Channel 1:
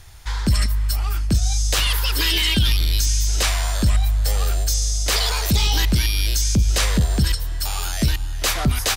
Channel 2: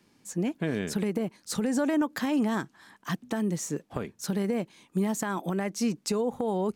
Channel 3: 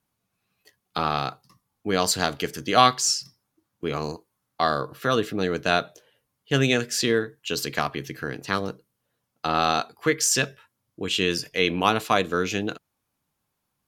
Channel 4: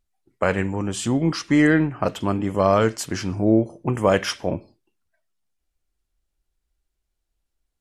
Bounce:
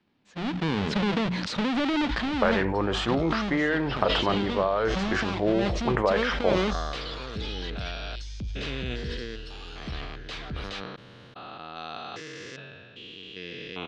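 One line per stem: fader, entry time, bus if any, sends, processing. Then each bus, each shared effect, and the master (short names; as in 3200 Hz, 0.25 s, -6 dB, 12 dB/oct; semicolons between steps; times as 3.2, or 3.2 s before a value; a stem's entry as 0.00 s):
-15.0 dB, 1.85 s, no send, dry
-10.5 dB, 0.00 s, no send, half-waves squared off; notches 60/120/180 Hz; AGC gain up to 12 dB
-8.0 dB, 2.15 s, no send, stepped spectrum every 0.4 s
0.0 dB, 2.00 s, no send, band shelf 850 Hz +11 dB 2.7 oct; compressor, threshold -11 dBFS, peak gain reduction 9 dB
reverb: off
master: vocal rider within 5 dB 0.5 s; ladder low-pass 4400 Hz, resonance 35%; sustainer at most 27 dB/s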